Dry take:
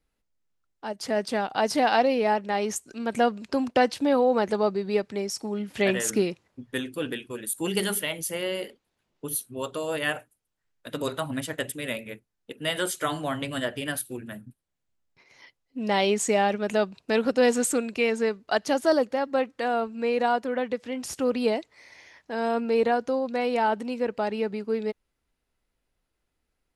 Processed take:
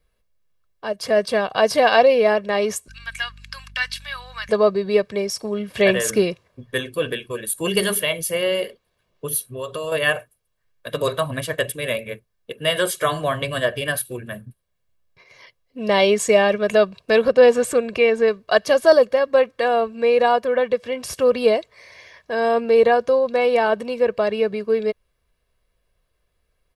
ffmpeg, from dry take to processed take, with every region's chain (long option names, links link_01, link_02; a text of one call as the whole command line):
ffmpeg -i in.wav -filter_complex "[0:a]asettb=1/sr,asplit=3[link_01][link_02][link_03];[link_01]atrim=end=2.884[link_04];[link_02]atrim=start=2.88:end=4.49,asetpts=PTS-STARTPTS,afade=type=in:duration=0.004:curve=qsin,afade=type=out:start_time=1.606:duration=0.004:curve=qsin,highpass=frequency=1500:width=0.5412,highpass=frequency=1500:width=1.3066,aeval=exprs='val(0)+0.00251*(sin(2*PI*50*n/s)+sin(2*PI*2*50*n/s)/2+sin(2*PI*3*50*n/s)/3+sin(2*PI*4*50*n/s)/4+sin(2*PI*5*50*n/s)/5)':channel_layout=same[link_05];[link_03]atrim=start=4.486[link_06];[link_04][link_05]acrossfade=duration=0.004:curve1=hsin:curve2=qsin[link_07];[link_07][link_06]acrossfade=duration=0.004:curve1=qsin:curve2=hsin,asettb=1/sr,asplit=3[link_08][link_09][link_10];[link_08]atrim=end=9.434[link_11];[link_09]atrim=start=9.43:end=9.92,asetpts=PTS-STARTPTS,afade=type=in:duration=0.004:curve=qsin,afade=type=out:start_time=0.486:duration=0.004:curve=qsin,aecho=1:1:7.1:0.31,atrim=end_sample=21609,acompressor=threshold=-32dB:ratio=6:attack=3.2:release=140:knee=1:detection=peak[link_12];[link_10]atrim=start=9.916[link_13];[link_11][link_12]acrossfade=duration=0.004:curve1=hsin:curve2=qsin[link_14];[link_14][link_13]acrossfade=duration=0.004:curve1=qsin:curve2=hsin,asettb=1/sr,asplit=3[link_15][link_16][link_17];[link_15]atrim=end=17.284[link_18];[link_16]atrim=start=17.28:end=18.28,asetpts=PTS-STARTPTS,afade=type=in:duration=0.004:curve=qsin,afade=type=out:start_time=0.996:duration=0.004:curve=qsin,highshelf=frequency=4000:gain=-9.5,acompressor=mode=upward:threshold=-26dB:ratio=2.5:attack=3.2:release=140:knee=2.83:detection=peak[link_19];[link_17]atrim=start=18.276[link_20];[link_18][link_19]acrossfade=duration=0.004:curve1=hsin:curve2=qsin[link_21];[link_21][link_20]acrossfade=duration=0.004:curve1=qsin:curve2=hsin,equalizer=frequency=7100:width=1.5:gain=-5.5,aecho=1:1:1.8:0.65,volume=6dB" out.wav